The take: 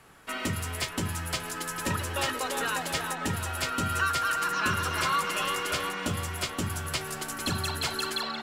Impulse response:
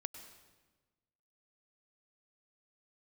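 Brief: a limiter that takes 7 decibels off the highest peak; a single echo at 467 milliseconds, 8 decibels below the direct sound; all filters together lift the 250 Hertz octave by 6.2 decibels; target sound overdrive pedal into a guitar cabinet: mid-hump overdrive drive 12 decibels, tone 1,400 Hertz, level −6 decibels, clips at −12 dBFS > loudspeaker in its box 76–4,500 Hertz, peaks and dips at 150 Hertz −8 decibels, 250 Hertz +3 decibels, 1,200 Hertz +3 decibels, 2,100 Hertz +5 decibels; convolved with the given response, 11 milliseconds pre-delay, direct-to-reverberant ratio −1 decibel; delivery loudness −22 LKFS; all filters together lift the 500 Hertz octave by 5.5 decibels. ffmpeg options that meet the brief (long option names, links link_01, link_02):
-filter_complex "[0:a]equalizer=frequency=250:width_type=o:gain=5.5,equalizer=frequency=500:width_type=o:gain=5,alimiter=limit=-19.5dB:level=0:latency=1,aecho=1:1:467:0.398,asplit=2[link_01][link_02];[1:a]atrim=start_sample=2205,adelay=11[link_03];[link_02][link_03]afir=irnorm=-1:irlink=0,volume=3.5dB[link_04];[link_01][link_04]amix=inputs=2:normalize=0,asplit=2[link_05][link_06];[link_06]highpass=frequency=720:poles=1,volume=12dB,asoftclip=type=tanh:threshold=-12dB[link_07];[link_05][link_07]amix=inputs=2:normalize=0,lowpass=frequency=1400:poles=1,volume=-6dB,highpass=76,equalizer=frequency=150:width_type=q:width=4:gain=-8,equalizer=frequency=250:width_type=q:width=4:gain=3,equalizer=frequency=1200:width_type=q:width=4:gain=3,equalizer=frequency=2100:width_type=q:width=4:gain=5,lowpass=frequency=4500:width=0.5412,lowpass=frequency=4500:width=1.3066,volume=2dB"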